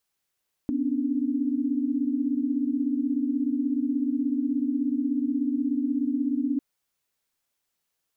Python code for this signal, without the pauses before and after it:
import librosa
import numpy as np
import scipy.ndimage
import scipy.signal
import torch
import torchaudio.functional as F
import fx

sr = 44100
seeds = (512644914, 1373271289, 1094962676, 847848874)

y = fx.chord(sr, length_s=5.9, notes=(59, 61, 62), wave='sine', level_db=-27.5)